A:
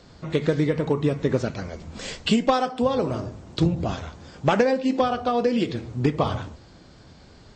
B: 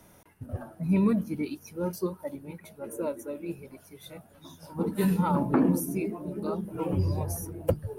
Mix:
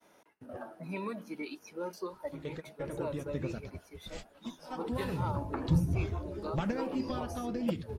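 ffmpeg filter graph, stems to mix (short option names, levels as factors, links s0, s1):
-filter_complex "[0:a]asubboost=boost=10:cutoff=140,flanger=delay=1.5:depth=3.4:regen=-66:speed=0.29:shape=triangular,adelay=2100,volume=0.282[s0];[1:a]agate=range=0.0224:threshold=0.00251:ratio=3:detection=peak,acrossover=split=250 6700:gain=0.0794 1 0.224[s1][s2][s3];[s1][s2][s3]amix=inputs=3:normalize=0,acrossover=split=650|4600[s4][s5][s6];[s4]acompressor=threshold=0.01:ratio=4[s7];[s5]acompressor=threshold=0.01:ratio=4[s8];[s6]acompressor=threshold=0.00158:ratio=4[s9];[s7][s8][s9]amix=inputs=3:normalize=0,volume=1.06,asplit=2[s10][s11];[s11]apad=whole_len=425811[s12];[s0][s12]sidechaingate=range=0.0224:threshold=0.00447:ratio=16:detection=peak[s13];[s13][s10]amix=inputs=2:normalize=0"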